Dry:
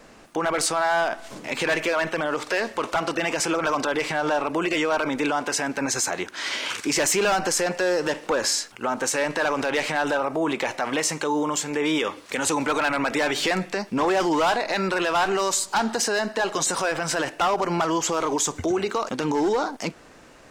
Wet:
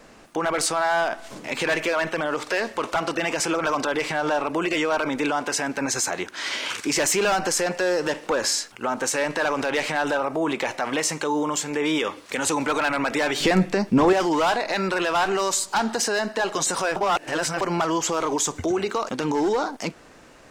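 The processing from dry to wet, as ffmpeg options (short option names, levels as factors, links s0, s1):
-filter_complex "[0:a]asettb=1/sr,asplit=3[s0][s1][s2];[s0]atrim=end=13.404[s3];[s1]atrim=start=13.4:end=14.13,asetpts=PTS-STARTPTS,afade=t=in:d=0.004:c=qsin,afade=t=out:st=0.726:d=0.004:c=qsin,lowshelf=f=390:g=11.5[s4];[s2]atrim=start=14.126[s5];[s3][s4]acrossfade=d=0.004:c1=hsin:c2=qsin[s6];[s6][s5]acrossfade=d=0.004:c1=qsin:c2=hsin,asplit=3[s7][s8][s9];[s7]atrim=end=16.962[s10];[s8]atrim=start=16.958:end=17.612,asetpts=PTS-STARTPTS,areverse[s11];[s9]atrim=start=17.608[s12];[s10][s11]acrossfade=d=0.004:c1=hsin:c2=hsin[s13];[s13][s12]acrossfade=d=0.004:c1=hsin:c2=hsin"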